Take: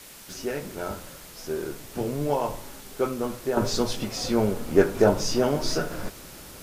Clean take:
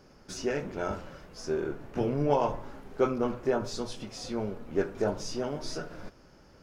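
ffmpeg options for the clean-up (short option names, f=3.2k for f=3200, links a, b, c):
-af "adeclick=t=4,afwtdn=0.0056,asetnsamples=n=441:p=0,asendcmd='3.57 volume volume -10dB',volume=0dB"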